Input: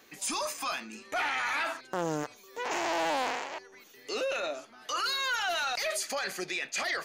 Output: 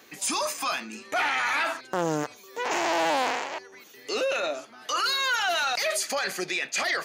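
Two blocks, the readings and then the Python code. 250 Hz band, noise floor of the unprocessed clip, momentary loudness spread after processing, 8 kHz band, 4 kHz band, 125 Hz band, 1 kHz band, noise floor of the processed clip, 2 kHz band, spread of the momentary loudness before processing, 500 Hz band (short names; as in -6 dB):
+5.0 dB, -56 dBFS, 9 LU, +5.0 dB, +5.0 dB, +4.5 dB, +5.0 dB, -51 dBFS, +5.0 dB, 9 LU, +5.0 dB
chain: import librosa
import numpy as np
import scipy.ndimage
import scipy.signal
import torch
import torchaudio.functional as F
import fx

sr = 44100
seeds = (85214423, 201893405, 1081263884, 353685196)

y = scipy.signal.sosfilt(scipy.signal.butter(2, 80.0, 'highpass', fs=sr, output='sos'), x)
y = y * librosa.db_to_amplitude(5.0)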